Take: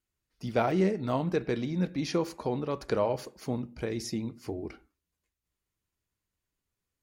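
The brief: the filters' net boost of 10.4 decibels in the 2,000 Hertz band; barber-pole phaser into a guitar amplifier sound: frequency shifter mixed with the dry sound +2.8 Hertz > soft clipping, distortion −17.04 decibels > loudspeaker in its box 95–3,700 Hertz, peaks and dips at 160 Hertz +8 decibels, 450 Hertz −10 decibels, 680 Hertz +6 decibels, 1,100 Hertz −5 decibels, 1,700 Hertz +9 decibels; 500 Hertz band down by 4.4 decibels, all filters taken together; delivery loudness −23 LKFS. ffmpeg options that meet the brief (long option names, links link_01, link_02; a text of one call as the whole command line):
ffmpeg -i in.wav -filter_complex "[0:a]equalizer=frequency=500:width_type=o:gain=-5,equalizer=frequency=2000:width_type=o:gain=7.5,asplit=2[link_01][link_02];[link_02]afreqshift=2.8[link_03];[link_01][link_03]amix=inputs=2:normalize=1,asoftclip=threshold=-25.5dB,highpass=95,equalizer=frequency=160:width_type=q:width=4:gain=8,equalizer=frequency=450:width_type=q:width=4:gain=-10,equalizer=frequency=680:width_type=q:width=4:gain=6,equalizer=frequency=1100:width_type=q:width=4:gain=-5,equalizer=frequency=1700:width_type=q:width=4:gain=9,lowpass=frequency=3700:width=0.5412,lowpass=frequency=3700:width=1.3066,volume=13dB" out.wav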